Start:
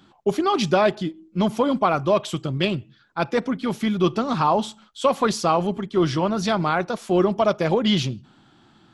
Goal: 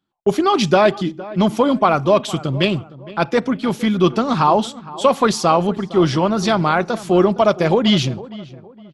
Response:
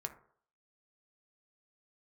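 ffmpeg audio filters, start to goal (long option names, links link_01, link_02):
-filter_complex "[0:a]agate=range=-28dB:threshold=-41dB:ratio=16:detection=peak,asplit=2[link_01][link_02];[link_02]adelay=462,lowpass=frequency=1800:poles=1,volume=-17.5dB,asplit=2[link_03][link_04];[link_04]adelay=462,lowpass=frequency=1800:poles=1,volume=0.35,asplit=2[link_05][link_06];[link_06]adelay=462,lowpass=frequency=1800:poles=1,volume=0.35[link_07];[link_03][link_05][link_07]amix=inputs=3:normalize=0[link_08];[link_01][link_08]amix=inputs=2:normalize=0,volume=5dB"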